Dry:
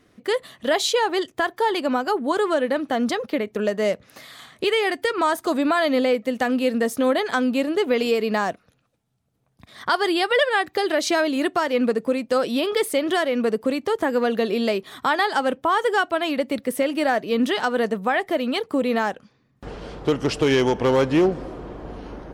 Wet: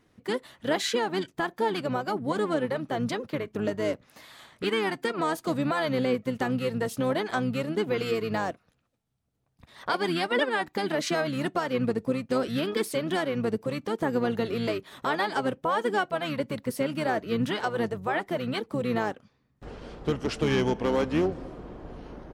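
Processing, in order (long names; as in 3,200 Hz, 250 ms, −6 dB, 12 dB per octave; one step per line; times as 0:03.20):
pitch-shifted copies added −12 semitones −6 dB, −5 semitones −12 dB
level −7.5 dB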